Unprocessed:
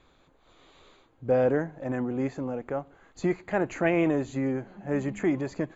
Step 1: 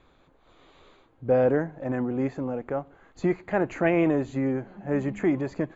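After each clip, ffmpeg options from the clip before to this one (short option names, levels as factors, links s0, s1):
-af "highshelf=f=4800:g=-10.5,volume=1.26"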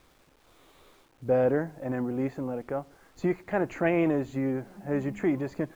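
-af "acrusher=bits=9:mix=0:aa=0.000001,volume=0.75"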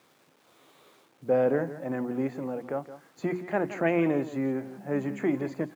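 -af "highpass=f=130:w=0.5412,highpass=f=130:w=1.3066,bandreject=f=60:t=h:w=6,bandreject=f=120:t=h:w=6,bandreject=f=180:t=h:w=6,bandreject=f=240:t=h:w=6,bandreject=f=300:t=h:w=6,bandreject=f=360:t=h:w=6,aecho=1:1:170:0.211"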